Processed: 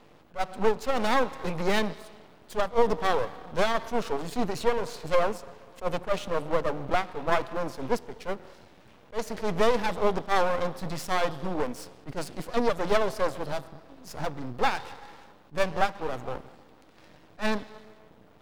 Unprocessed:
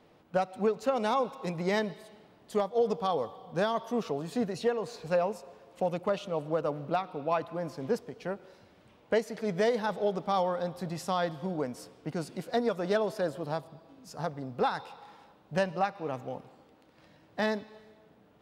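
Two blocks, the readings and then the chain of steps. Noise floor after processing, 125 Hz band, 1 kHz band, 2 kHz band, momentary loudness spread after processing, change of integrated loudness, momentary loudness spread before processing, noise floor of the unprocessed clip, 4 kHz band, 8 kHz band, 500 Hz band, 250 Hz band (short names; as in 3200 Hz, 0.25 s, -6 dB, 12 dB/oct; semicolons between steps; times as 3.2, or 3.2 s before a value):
-55 dBFS, +0.5 dB, +3.5 dB, +6.0 dB, 13 LU, +2.5 dB, 10 LU, -61 dBFS, +5.5 dB, +6.0 dB, +2.0 dB, +1.0 dB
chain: half-wave rectifier; attack slew limiter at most 340 dB/s; gain +9 dB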